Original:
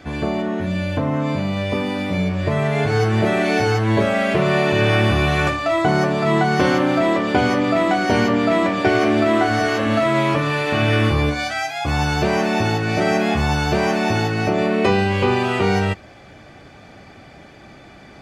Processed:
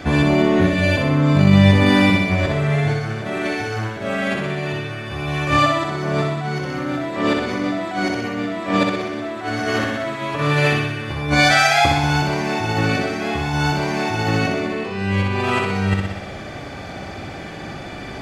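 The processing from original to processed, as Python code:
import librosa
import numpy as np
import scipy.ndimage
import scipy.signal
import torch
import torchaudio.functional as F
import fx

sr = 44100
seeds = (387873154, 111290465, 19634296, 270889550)

p1 = fx.over_compress(x, sr, threshold_db=-23.0, ratio=-0.5)
p2 = p1 + fx.room_flutter(p1, sr, wall_m=10.6, rt60_s=1.0, dry=0)
y = p2 * librosa.db_to_amplitude(3.0)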